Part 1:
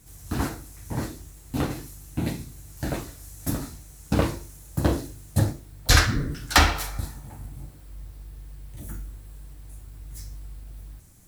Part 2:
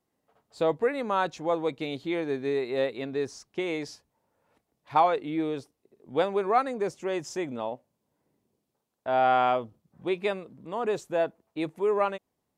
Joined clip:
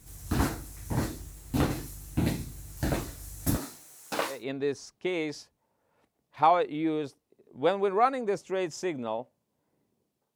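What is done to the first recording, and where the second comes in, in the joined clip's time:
part 1
0:03.56–0:04.45: high-pass filter 260 Hz → 980 Hz
0:04.36: continue with part 2 from 0:02.89, crossfade 0.18 s

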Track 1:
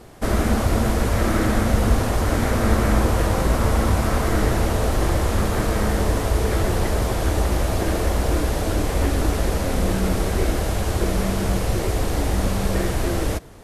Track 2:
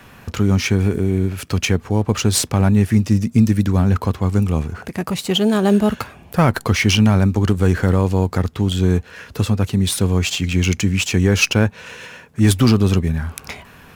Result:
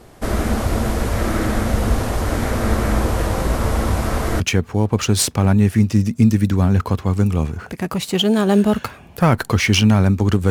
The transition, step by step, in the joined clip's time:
track 1
0:04.40: continue with track 2 from 0:01.56

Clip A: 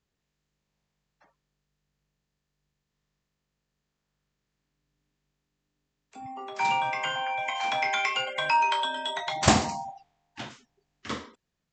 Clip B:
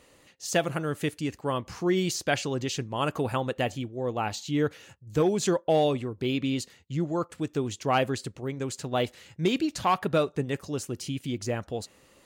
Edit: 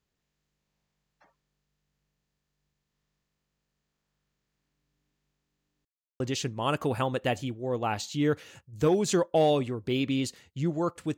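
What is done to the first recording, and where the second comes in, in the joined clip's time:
clip A
0:05.85–0:06.20: silence
0:06.20: continue with clip B from 0:02.54

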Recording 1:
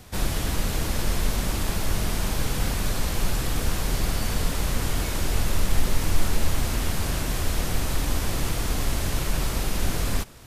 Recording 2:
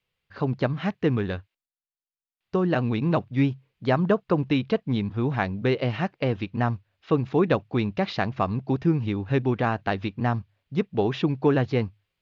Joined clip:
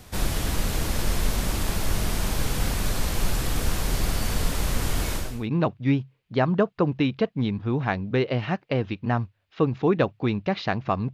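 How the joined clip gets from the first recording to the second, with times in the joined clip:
recording 1
0:05.32: continue with recording 2 from 0:02.83, crossfade 0.38 s quadratic

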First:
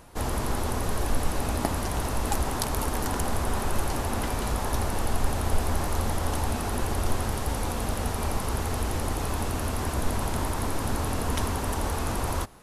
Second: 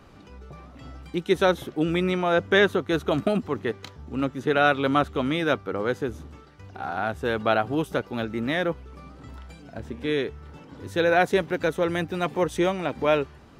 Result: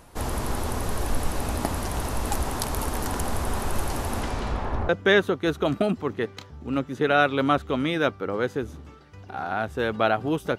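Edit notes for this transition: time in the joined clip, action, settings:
first
0:04.20–0:04.89: low-pass filter 9,200 Hz → 1,300 Hz
0:04.89: continue with second from 0:02.35

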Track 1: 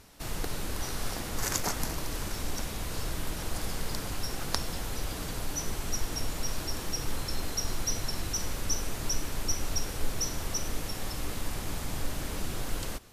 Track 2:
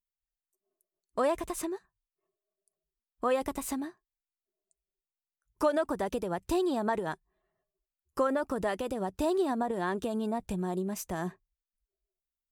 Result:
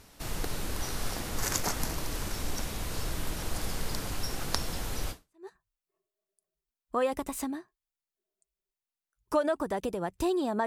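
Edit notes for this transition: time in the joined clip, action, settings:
track 1
0:05.29: continue with track 2 from 0:01.58, crossfade 0.38 s exponential

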